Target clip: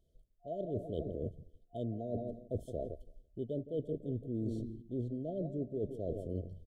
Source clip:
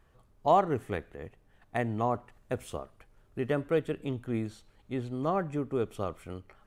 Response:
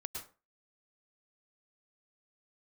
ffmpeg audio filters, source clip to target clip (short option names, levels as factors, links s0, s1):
-filter_complex "[0:a]asplit=2[s0][s1];[s1]adelay=167,lowpass=f=1100:p=1,volume=0.224,asplit=2[s2][s3];[s3]adelay=167,lowpass=f=1100:p=1,volume=0.51,asplit=2[s4][s5];[s5]adelay=167,lowpass=f=1100:p=1,volume=0.51,asplit=2[s6][s7];[s7]adelay=167,lowpass=f=1100:p=1,volume=0.51,asplit=2[s8][s9];[s9]adelay=167,lowpass=f=1100:p=1,volume=0.51[s10];[s0][s2][s4][s6][s8][s10]amix=inputs=6:normalize=0,afwtdn=0.01,areverse,acompressor=threshold=0.00891:ratio=12,areverse,afftfilt=real='re*(1-between(b*sr/4096,710,3000))':imag='im*(1-between(b*sr/4096,710,3000))':win_size=4096:overlap=0.75,volume=2.37"